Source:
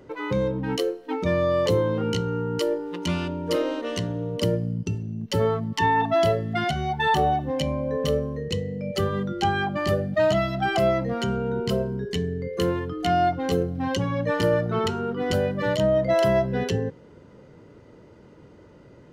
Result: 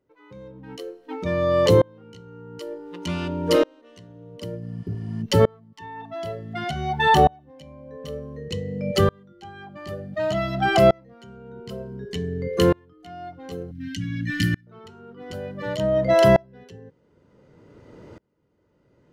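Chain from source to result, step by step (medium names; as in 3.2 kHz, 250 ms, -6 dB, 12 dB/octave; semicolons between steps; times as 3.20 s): 4.64–5.19 s: spectral replace 650–11000 Hz before; 13.71–14.67 s: elliptic band-stop 280–1700 Hz, stop band 40 dB; sawtooth tremolo in dB swelling 0.55 Hz, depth 33 dB; trim +7.5 dB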